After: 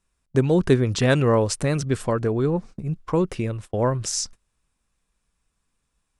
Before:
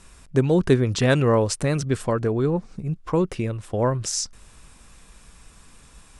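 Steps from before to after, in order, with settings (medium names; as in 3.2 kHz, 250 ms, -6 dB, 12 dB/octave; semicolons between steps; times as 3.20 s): gate -36 dBFS, range -25 dB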